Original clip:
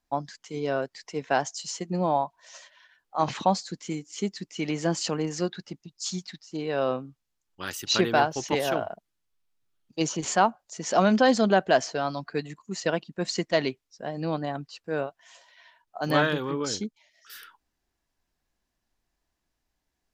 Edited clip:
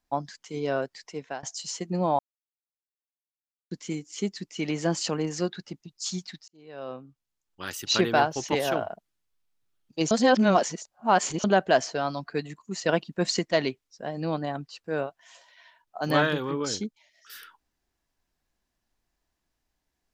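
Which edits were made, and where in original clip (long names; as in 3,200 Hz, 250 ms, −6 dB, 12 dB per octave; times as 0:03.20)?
0:00.80–0:01.43: fade out equal-power, to −22.5 dB
0:02.19–0:03.71: silence
0:06.48–0:07.84: fade in
0:10.11–0:11.44: reverse
0:12.89–0:13.39: clip gain +3.5 dB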